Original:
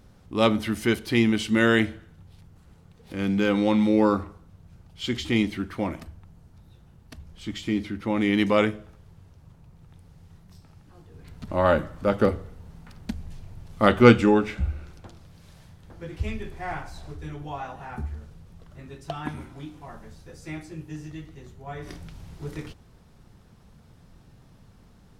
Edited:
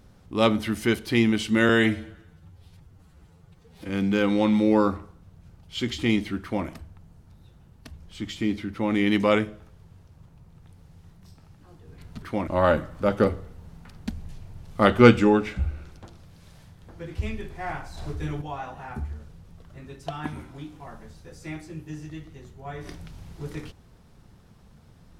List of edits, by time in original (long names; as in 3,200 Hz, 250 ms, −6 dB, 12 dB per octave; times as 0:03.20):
0:01.69–0:03.16: time-stretch 1.5×
0:05.68–0:05.93: duplicate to 0:11.49
0:16.99–0:17.43: clip gain +6 dB